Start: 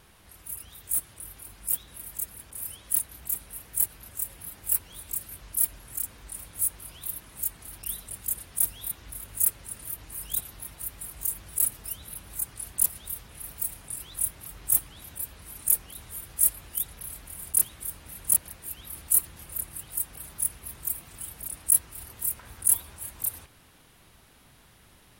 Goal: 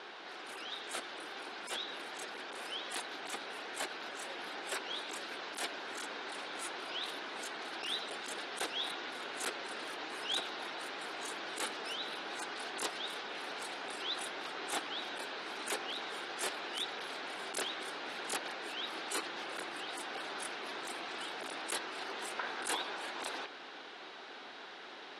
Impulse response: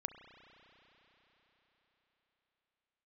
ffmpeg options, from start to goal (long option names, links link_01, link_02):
-af "highpass=frequency=300:width=0.5412,highpass=frequency=300:width=1.3066,equalizer=frequency=400:width_type=q:width=4:gain=4,equalizer=frequency=770:width_type=q:width=4:gain=5,equalizer=frequency=1500:width_type=q:width=4:gain=5,equalizer=frequency=3800:width_type=q:width=4:gain=3,lowpass=frequency=4800:width=0.5412,lowpass=frequency=4800:width=1.3066,volume=9.5dB"